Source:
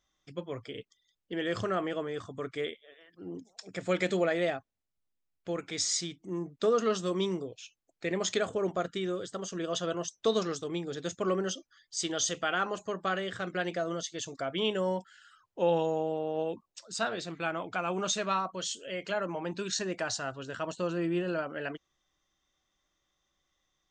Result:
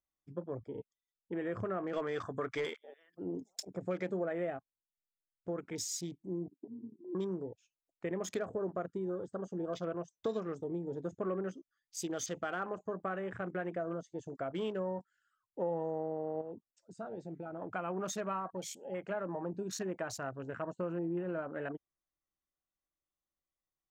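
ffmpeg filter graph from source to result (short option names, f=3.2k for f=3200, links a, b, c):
-filter_complex "[0:a]asettb=1/sr,asplit=3[a][b][c];[a]atrim=end=1.934[d];[b]atrim=start=1.93:end=3.65,asetpts=PTS-STARTPTS,afade=t=in:d=0.004:c=qsin,afade=t=out:st=1.716:d=0.004:c=qsin,tiltshelf=f=770:g=-7,aeval=exprs='0.106*sin(PI/2*1.78*val(0)/0.106)':c=same[e];[c]atrim=start=3.646[f];[d][e]acrossfade=d=0.004:c1=hsin:c2=qsin[g];[g][f]acrossfade=d=0.004:c1=qsin:c2=hsin,asettb=1/sr,asplit=3[h][i][j];[h]atrim=end=6.484[k];[i]atrim=start=6.48:end=7.15,asetpts=PTS-STARTPTS,afade=t=in:d=0.004:c=qsin,afade=t=out:st=0.666:d=0.004:c=qsin,asuperpass=centerf=280:order=8:qfactor=2.8,aecho=1:1:2.5:0.51,atrim=end_sample=29547[l];[j]atrim=start=7.146[m];[k][l]acrossfade=d=0.004:c1=hsin:c2=qsin[n];[n][m]acrossfade=d=0.004:c1=qsin:c2=hsin,asettb=1/sr,asplit=3[o][p][q];[o]atrim=end=16.414[r];[p]atrim=start=16.41:end=17.62,asetpts=PTS-STARTPTS,afade=t=in:d=0.004:c=qsin,afade=t=out:st=1.206:d=0.004:c=qsin,equalizer=f=1.1k:w=4.7:g=-14.5,acompressor=threshold=-38dB:ratio=3:attack=3.2:release=140:knee=1:detection=peak[s];[q]atrim=start=17.616[t];[r][s]acrossfade=d=0.004:c1=hsin:c2=qsin[u];[u][t]acrossfade=d=0.004:c1=qsin:c2=hsin,afwtdn=0.00891,equalizer=f=3.7k:t=o:w=1.7:g=-13,acompressor=threshold=-35dB:ratio=2.5"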